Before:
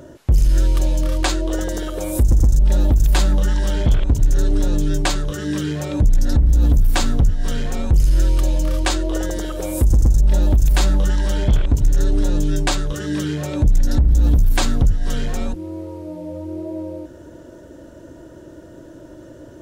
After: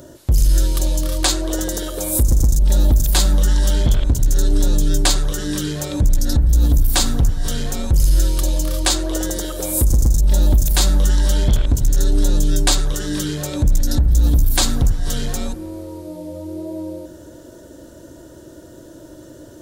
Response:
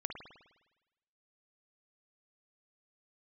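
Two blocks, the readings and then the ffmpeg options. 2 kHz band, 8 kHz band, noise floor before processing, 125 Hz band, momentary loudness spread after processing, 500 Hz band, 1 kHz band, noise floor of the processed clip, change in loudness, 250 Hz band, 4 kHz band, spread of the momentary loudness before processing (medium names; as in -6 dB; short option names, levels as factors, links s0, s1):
-0.5 dB, +8.5 dB, -41 dBFS, 0.0 dB, 11 LU, -0.5 dB, -0.5 dB, -41 dBFS, +1.0 dB, -0.5 dB, +6.0 dB, 11 LU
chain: -filter_complex "[0:a]asplit=2[s0][s1];[1:a]atrim=start_sample=2205,asetrate=26460,aresample=44100[s2];[s1][s2]afir=irnorm=-1:irlink=0,volume=0.282[s3];[s0][s3]amix=inputs=2:normalize=0,aexciter=amount=3.5:drive=2:freq=3500,volume=0.708"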